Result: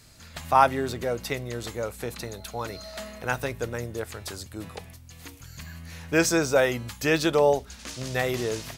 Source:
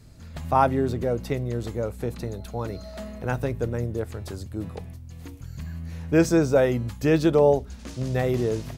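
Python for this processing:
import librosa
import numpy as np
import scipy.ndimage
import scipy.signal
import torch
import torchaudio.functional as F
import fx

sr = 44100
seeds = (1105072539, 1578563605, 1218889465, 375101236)

y = fx.tilt_shelf(x, sr, db=-8.0, hz=700.0)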